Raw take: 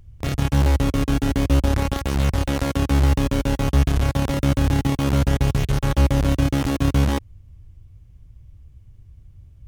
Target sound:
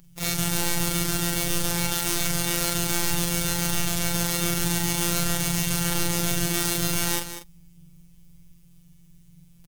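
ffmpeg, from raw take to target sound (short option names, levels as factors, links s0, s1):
-filter_complex "[0:a]afftfilt=real='re':imag='-im':win_size=4096:overlap=0.75,equalizer=f=92:w=1.5:g=14,acontrast=36,asplit=2[s0][s1];[s1]aecho=0:1:197:0.282[s2];[s0][s2]amix=inputs=2:normalize=0,crystalizer=i=9.5:c=0,afftfilt=real='hypot(re,im)*cos(PI*b)':imag='0':win_size=1024:overlap=0.75,volume=0.531"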